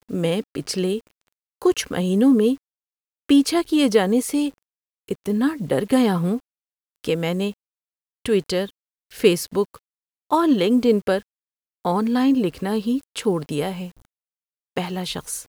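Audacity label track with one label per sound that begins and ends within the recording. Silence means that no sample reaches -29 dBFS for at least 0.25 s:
1.620000	2.550000	sound
3.290000	4.490000	sound
5.090000	6.380000	sound
7.050000	7.510000	sound
8.260000	8.660000	sound
9.180000	9.760000	sound
10.320000	11.190000	sound
11.850000	13.870000	sound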